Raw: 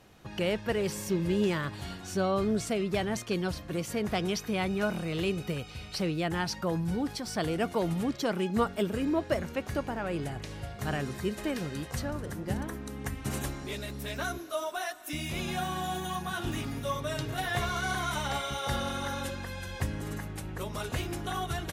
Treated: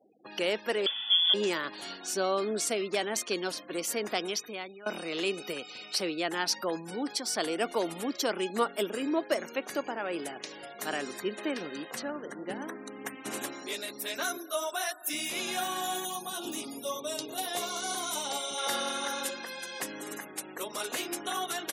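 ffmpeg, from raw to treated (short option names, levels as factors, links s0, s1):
-filter_complex "[0:a]asettb=1/sr,asplit=3[s0][s1][s2];[s0]atrim=end=0.864[s3];[s1]atrim=start=0.86:end=1.34,asetpts=PTS-STARTPTS,afade=t=in:d=0.004:c=qsin,afade=t=out:st=0.476:d=0.004:c=qsin,lowpass=f=3100:t=q:w=0.5098,lowpass=f=3100:t=q:w=0.6013,lowpass=f=3100:t=q:w=0.9,lowpass=f=3100:t=q:w=2.563,afreqshift=-3600[s4];[s2]atrim=start=1.336[s5];[s3][s4]acrossfade=d=0.004:c1=hsin:c2=qsin[s6];[s6][s5]acrossfade=d=0.004:c1=qsin:c2=hsin,asplit=3[s7][s8][s9];[s7]afade=t=out:st=11.19:d=0.02[s10];[s8]bass=f=250:g=3,treble=f=4000:g=-7,afade=t=in:st=11.19:d=0.02,afade=t=out:st=13.51:d=0.02[s11];[s9]afade=t=in:st=13.51:d=0.02[s12];[s10][s11][s12]amix=inputs=3:normalize=0,asettb=1/sr,asplit=3[s13][s14][s15];[s13]atrim=end=16.054[s16];[s14]atrim=start=16.05:end=18.58,asetpts=PTS-STARTPTS,afade=t=in:d=0.004:c=qsin,afade=t=out:st=2.526:d=0.004:c=qsin,equalizer=f=1700:w=1.3:g=-12[s17];[s15]atrim=start=18.576[s18];[s16][s17]acrossfade=d=0.004:c1=hsin:c2=qsin[s19];[s19][s18]acrossfade=d=0.004:c1=qsin:c2=hsin,asplit=2[s20][s21];[s20]atrim=end=4.86,asetpts=PTS-STARTPTS,afade=t=out:st=4.08:d=0.78:silence=0.0891251[s22];[s21]atrim=start=4.86,asetpts=PTS-STARTPTS,afade=t=in:d=0.004:c=hsin:silence=0.0891251[s23];[s22][s23]concat=n=2:v=0:a=1,afftfilt=real='re*gte(hypot(re,im),0.00355)':imag='im*gte(hypot(re,im),0.00355)':win_size=1024:overlap=0.75,highpass=f=270:w=0.5412,highpass=f=270:w=1.3066,highshelf=f=4100:g=11"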